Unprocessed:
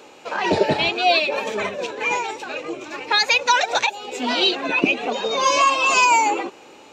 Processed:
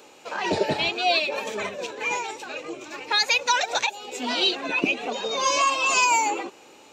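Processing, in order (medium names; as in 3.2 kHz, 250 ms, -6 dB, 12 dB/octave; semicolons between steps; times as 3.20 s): treble shelf 5.9 kHz +9 dB; trim -5.5 dB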